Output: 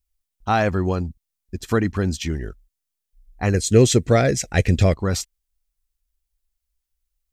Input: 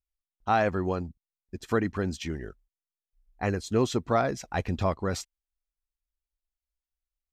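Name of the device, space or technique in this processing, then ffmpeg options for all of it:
smiley-face EQ: -filter_complex "[0:a]lowshelf=frequency=96:gain=8.5,equalizer=frequency=820:width_type=o:width=2.5:gain=-3,highshelf=frequency=5200:gain=6,asettb=1/sr,asplit=3[link_01][link_02][link_03];[link_01]atrim=end=3.544[link_04];[link_02]atrim=start=3.54:end=4.94,asetpts=PTS-STARTPTS,afade=type=in:duration=0.004:curve=qsin,afade=type=out:start_time=1.396:duration=0.004:curve=qsin,equalizer=frequency=125:width_type=o:width=1:gain=5,equalizer=frequency=500:width_type=o:width=1:gain=9,equalizer=frequency=1000:width_type=o:width=1:gain=-12,equalizer=frequency=2000:width_type=o:width=1:gain=9,equalizer=frequency=8000:width_type=o:width=1:gain=9[link_05];[link_03]atrim=start=4.936[link_06];[link_04][link_05]acrossfade=duration=0.004:curve1=hsin:curve2=qsin[link_07];[link_07][link_06]acrossfade=duration=0.004:curve1=qsin:curve2=hsin,volume=6.5dB"

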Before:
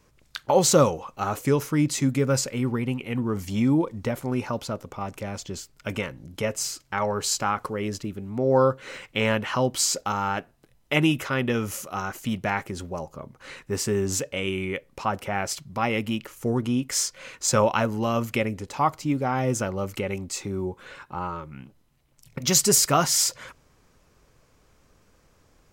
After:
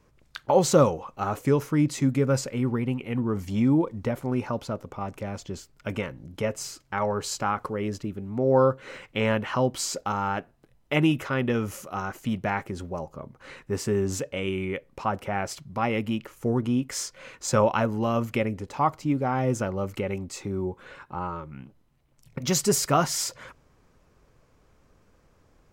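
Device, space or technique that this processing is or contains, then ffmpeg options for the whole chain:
behind a face mask: -af "highshelf=frequency=2500:gain=-8"

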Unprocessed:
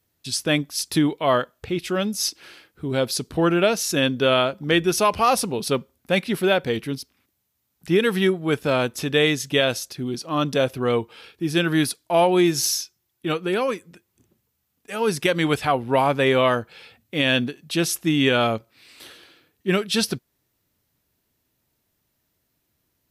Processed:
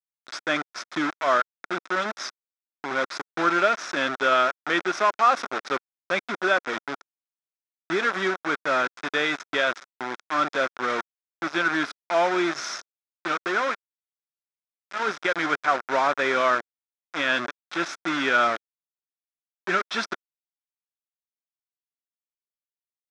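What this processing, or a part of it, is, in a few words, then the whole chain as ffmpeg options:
hand-held game console: -af "acrusher=bits=3:mix=0:aa=0.000001,highpass=420,equalizer=frequency=470:width_type=q:width=4:gain=-8,equalizer=frequency=830:width_type=q:width=4:gain=-4,equalizer=frequency=1400:width_type=q:width=4:gain=9,equalizer=frequency=2900:width_type=q:width=4:gain=-10,equalizer=frequency=4400:width_type=q:width=4:gain=-10,lowpass=frequency=4800:width=0.5412,lowpass=frequency=4800:width=1.3066,volume=-1dB"

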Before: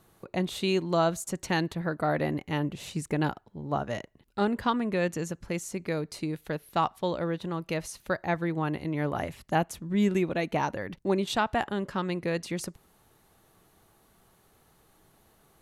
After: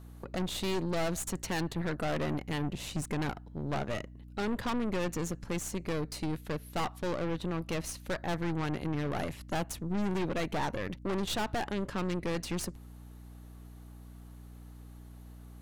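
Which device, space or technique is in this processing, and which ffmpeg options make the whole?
valve amplifier with mains hum: -af "aeval=exprs='(tanh(50.1*val(0)+0.75)-tanh(0.75))/50.1':channel_layout=same,aeval=exprs='val(0)+0.00251*(sin(2*PI*60*n/s)+sin(2*PI*2*60*n/s)/2+sin(2*PI*3*60*n/s)/3+sin(2*PI*4*60*n/s)/4+sin(2*PI*5*60*n/s)/5)':channel_layout=same,volume=4.5dB"

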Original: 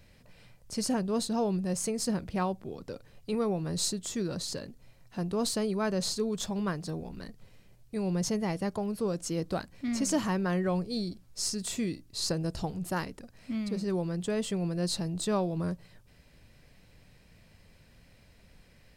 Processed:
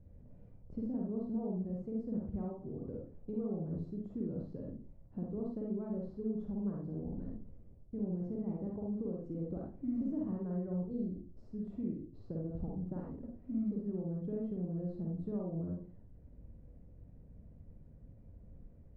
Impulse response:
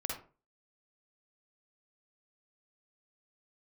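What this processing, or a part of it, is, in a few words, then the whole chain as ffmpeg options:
television next door: -filter_complex "[0:a]acompressor=threshold=-38dB:ratio=3,lowpass=370[link_01];[1:a]atrim=start_sample=2205[link_02];[link_01][link_02]afir=irnorm=-1:irlink=0,volume=1.5dB"

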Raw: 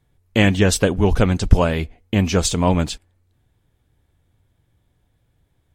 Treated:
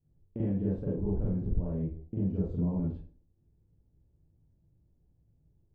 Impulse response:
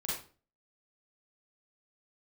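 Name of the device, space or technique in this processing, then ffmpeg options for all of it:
television next door: -filter_complex "[0:a]asettb=1/sr,asplit=3[link_01][link_02][link_03];[link_01]atrim=end=1.374[link_04];[link_02]atrim=start=1.37:end=2.79,asetpts=PTS-STARTPTS,afade=type=in:duration=0.004:curve=qsin,afade=type=out:start_time=1.416:duration=0.004:curve=qsin,equalizer=frequency=1900:width_type=o:width=2.7:gain=-3.5[link_05];[link_03]atrim=start=2.786[link_06];[link_04][link_05]acrossfade=duration=0.004:curve1=hsin:curve2=qsin[link_07];[link_07][link_06]acrossfade=duration=0.004:curve1=qsin:curve2=hsin,acompressor=threshold=-23dB:ratio=4,lowpass=410[link_08];[1:a]atrim=start_sample=2205[link_09];[link_08][link_09]afir=irnorm=-1:irlink=0,volume=-7.5dB"

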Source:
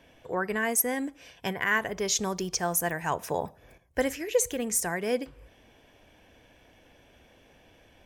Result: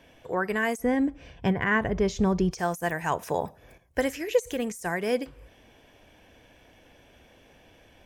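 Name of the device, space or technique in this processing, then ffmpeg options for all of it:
de-esser from a sidechain: -filter_complex "[0:a]asplit=3[link_01][link_02][link_03];[link_01]afade=type=out:start_time=0.77:duration=0.02[link_04];[link_02]aemphasis=mode=reproduction:type=riaa,afade=type=in:start_time=0.77:duration=0.02,afade=type=out:start_time=2.5:duration=0.02[link_05];[link_03]afade=type=in:start_time=2.5:duration=0.02[link_06];[link_04][link_05][link_06]amix=inputs=3:normalize=0,asplit=2[link_07][link_08];[link_08]highpass=6900,apad=whole_len=355360[link_09];[link_07][link_09]sidechaincompress=threshold=-42dB:ratio=20:attack=1.6:release=27,volume=2dB"

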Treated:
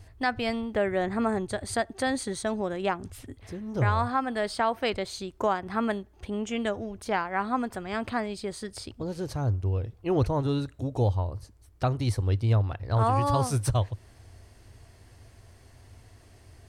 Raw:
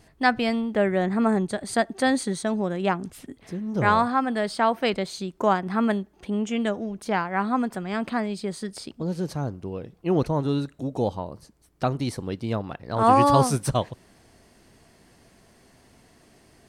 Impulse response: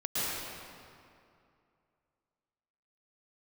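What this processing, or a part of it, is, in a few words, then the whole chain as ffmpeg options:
car stereo with a boomy subwoofer: -af "lowshelf=frequency=130:width_type=q:width=3:gain=9,alimiter=limit=-13.5dB:level=0:latency=1:release=278,volume=-1.5dB"

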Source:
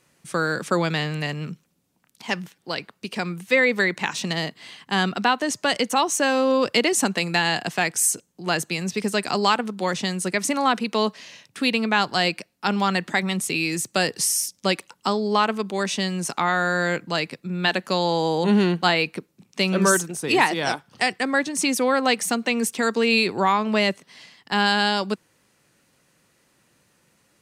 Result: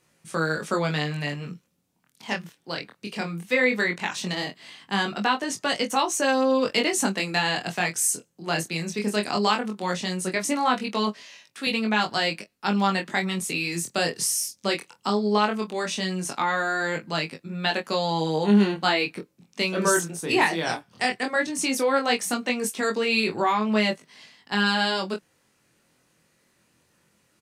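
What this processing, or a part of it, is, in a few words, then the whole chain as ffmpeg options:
double-tracked vocal: -filter_complex "[0:a]asettb=1/sr,asplit=3[link_01][link_02][link_03];[link_01]atrim=end=11.204[link_04];[link_02]atrim=start=11.2:end=11.67,asetpts=PTS-STARTPTS,afade=type=in:duration=0.004:curve=qsin,afade=type=out:start_time=0.466:duration=0.004:curve=qsin,highpass=frequency=540:poles=1[link_05];[link_03]atrim=start=11.666[link_06];[link_04][link_05]acrossfade=duration=0.004:curve1=hsin:curve2=qsin[link_07];[link_07][link_06]acrossfade=duration=0.004:curve1=qsin:curve2=hsin,asplit=2[link_08][link_09];[link_09]adelay=24,volume=-12dB[link_10];[link_08][link_10]amix=inputs=2:normalize=0,flanger=delay=18.5:depth=6:speed=0.17"

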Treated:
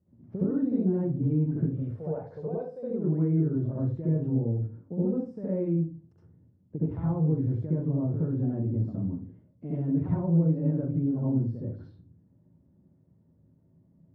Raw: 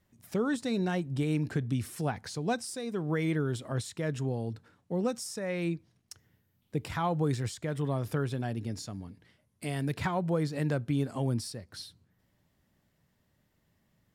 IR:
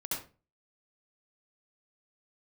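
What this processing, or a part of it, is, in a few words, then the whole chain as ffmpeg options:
television next door: -filter_complex "[0:a]highpass=74,asettb=1/sr,asplit=3[link_01][link_02][link_03];[link_01]atrim=end=1.664[link_04];[link_02]atrim=start=1.66:end=2.83,asetpts=PTS-STARTPTS,afade=type=in:duration=0.004:curve=qsin,afade=type=out:start_time=1.166:duration=0.004:curve=qsin,lowshelf=frequency=380:width_type=q:width=3:gain=-9[link_05];[link_03]atrim=start=2.826[link_06];[link_04][link_05]acrossfade=duration=0.004:curve1=hsin:curve2=qsin[link_07];[link_07][link_06]acrossfade=duration=0.004:curve1=qsin:curve2=hsin,acompressor=threshold=-34dB:ratio=4,lowpass=380[link_08];[1:a]atrim=start_sample=2205[link_09];[link_08][link_09]afir=irnorm=-1:irlink=0,volume=8dB"

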